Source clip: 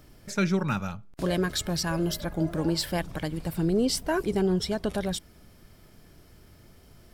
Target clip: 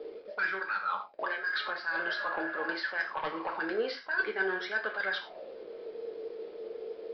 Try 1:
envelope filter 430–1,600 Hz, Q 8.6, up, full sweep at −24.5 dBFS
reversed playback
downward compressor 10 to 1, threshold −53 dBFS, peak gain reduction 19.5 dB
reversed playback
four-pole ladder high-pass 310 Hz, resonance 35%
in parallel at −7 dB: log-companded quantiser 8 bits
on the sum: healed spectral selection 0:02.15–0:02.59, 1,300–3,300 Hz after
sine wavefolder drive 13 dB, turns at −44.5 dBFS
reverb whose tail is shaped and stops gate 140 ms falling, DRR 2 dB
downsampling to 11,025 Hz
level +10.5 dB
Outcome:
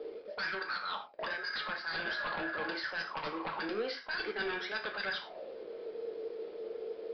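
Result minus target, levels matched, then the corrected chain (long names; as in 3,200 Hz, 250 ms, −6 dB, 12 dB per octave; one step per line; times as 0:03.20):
sine wavefolder: distortion +15 dB
envelope filter 430–1,600 Hz, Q 8.6, up, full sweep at −24.5 dBFS
reversed playback
downward compressor 10 to 1, threshold −53 dBFS, peak gain reduction 19.5 dB
reversed playback
four-pole ladder high-pass 310 Hz, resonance 35%
in parallel at −7 dB: log-companded quantiser 8 bits
on the sum: healed spectral selection 0:02.15–0:02.59, 1,300–3,300 Hz after
sine wavefolder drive 13 dB, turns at −36.5 dBFS
reverb whose tail is shaped and stops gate 140 ms falling, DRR 2 dB
downsampling to 11,025 Hz
level +10.5 dB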